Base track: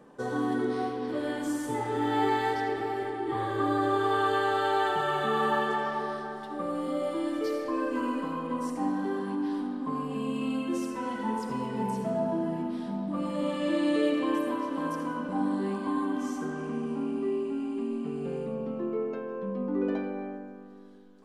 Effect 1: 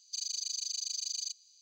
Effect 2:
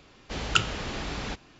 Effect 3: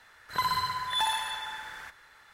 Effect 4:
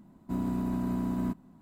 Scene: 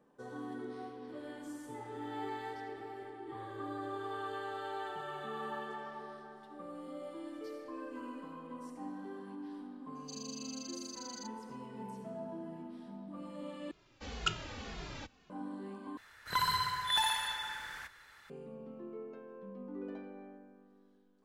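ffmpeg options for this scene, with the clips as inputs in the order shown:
-filter_complex "[0:a]volume=-14.5dB[a];[2:a]asplit=2[b][c];[c]adelay=2.4,afreqshift=-1.9[d];[b][d]amix=inputs=2:normalize=1[e];[3:a]equalizer=f=680:t=o:w=1.7:g=-4[f];[a]asplit=3[g][h][i];[g]atrim=end=13.714[j];[e]atrim=end=1.59,asetpts=PTS-STARTPTS,volume=-8dB[k];[h]atrim=start=15.296:end=15.974[l];[f]atrim=end=2.33,asetpts=PTS-STARTPTS,volume=-1dB[m];[i]atrim=start=18.296[n];[1:a]atrim=end=1.61,asetpts=PTS-STARTPTS,volume=-11.5dB,afade=t=in:d=0.004:c=hsin,afade=t=out:st=1.606:d=0.004:c=hsin,adelay=9950[o];[j][k]acrossfade=d=0.004:c1=hsin:c2=hsin[p];[p][l]acrossfade=d=0.004:c1=hsin:c2=hsin[q];[q][m]acrossfade=d=0.004:c1=hsin:c2=hsin[r];[r][n]acrossfade=d=0.004:c1=hsin:c2=hsin[s];[s][o]amix=inputs=2:normalize=0"

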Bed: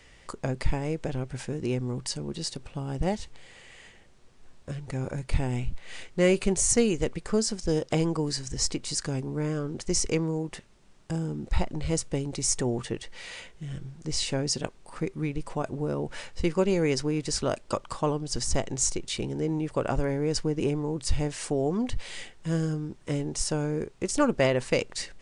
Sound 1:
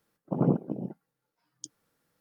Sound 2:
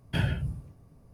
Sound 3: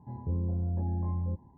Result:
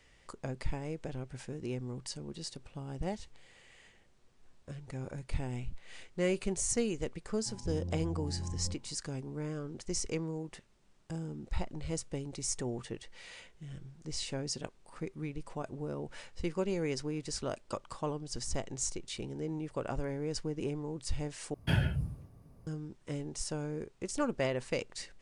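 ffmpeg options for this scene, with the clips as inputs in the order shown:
-filter_complex "[0:a]volume=-9dB,asplit=2[a][b];[a]atrim=end=21.544[c];[2:a]atrim=end=1.13,asetpts=PTS-STARTPTS,volume=-1.5dB[d];[b]atrim=start=22.666[e];[3:a]atrim=end=1.57,asetpts=PTS-STARTPTS,volume=-7.5dB,afade=t=in:d=0.004:c=hsin,afade=t=out:st=1.566:d=0.004:c=hsin,adelay=7390[f];[c][d]acrossfade=d=0.004:c1=hsin:c2=hsin[g];[g][e]acrossfade=d=0.004:c1=hsin:c2=hsin[h];[h][f]amix=inputs=2:normalize=0"

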